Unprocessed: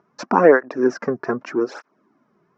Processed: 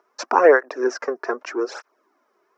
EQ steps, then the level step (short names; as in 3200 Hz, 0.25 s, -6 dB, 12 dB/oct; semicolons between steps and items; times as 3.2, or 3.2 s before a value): HPF 380 Hz 24 dB/oct; high shelf 4500 Hz +8.5 dB; 0.0 dB